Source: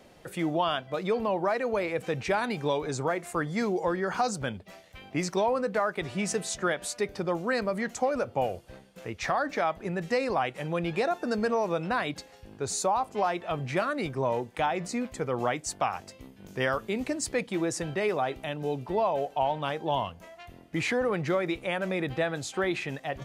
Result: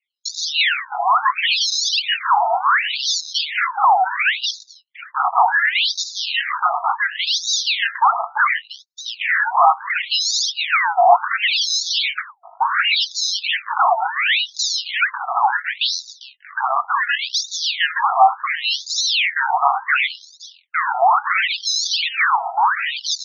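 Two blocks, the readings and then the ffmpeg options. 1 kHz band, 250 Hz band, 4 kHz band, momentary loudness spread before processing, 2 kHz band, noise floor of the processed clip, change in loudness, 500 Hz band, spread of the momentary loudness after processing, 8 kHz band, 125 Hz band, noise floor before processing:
+14.0 dB, below −40 dB, +22.0 dB, 7 LU, +15.5 dB, −49 dBFS, +12.0 dB, −1.0 dB, 7 LU, +12.5 dB, below −40 dB, −53 dBFS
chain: -af "agate=range=-44dB:threshold=-46dB:ratio=16:detection=peak,equalizer=frequency=520:width=6.3:gain=13,flanger=delay=18:depth=6:speed=0.22,acrusher=samples=26:mix=1:aa=0.000001:lfo=1:lforange=26:lforate=1.3,apsyclip=30dB,afftfilt=real='re*between(b*sr/1024,920*pow(5100/920,0.5+0.5*sin(2*PI*0.7*pts/sr))/1.41,920*pow(5100/920,0.5+0.5*sin(2*PI*0.7*pts/sr))*1.41)':imag='im*between(b*sr/1024,920*pow(5100/920,0.5+0.5*sin(2*PI*0.7*pts/sr))/1.41,920*pow(5100/920,0.5+0.5*sin(2*PI*0.7*pts/sr))*1.41)':win_size=1024:overlap=0.75,volume=-3.5dB"

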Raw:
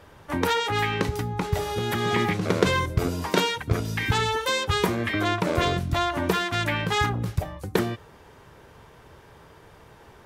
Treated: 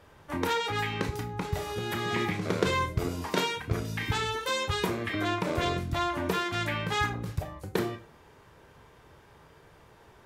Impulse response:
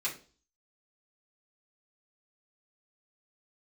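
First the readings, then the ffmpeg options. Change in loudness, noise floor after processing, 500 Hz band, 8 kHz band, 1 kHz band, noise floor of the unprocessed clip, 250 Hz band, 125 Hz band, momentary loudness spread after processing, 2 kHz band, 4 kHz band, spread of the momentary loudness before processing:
−5.0 dB, −57 dBFS, −5.5 dB, −5.0 dB, −5.0 dB, −51 dBFS, −5.0 dB, −6.0 dB, 5 LU, −5.0 dB, −5.0 dB, 5 LU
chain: -filter_complex "[0:a]asplit=2[link_01][link_02];[1:a]atrim=start_sample=2205,adelay=24[link_03];[link_02][link_03]afir=irnorm=-1:irlink=0,volume=-10dB[link_04];[link_01][link_04]amix=inputs=2:normalize=0,volume=-6dB"

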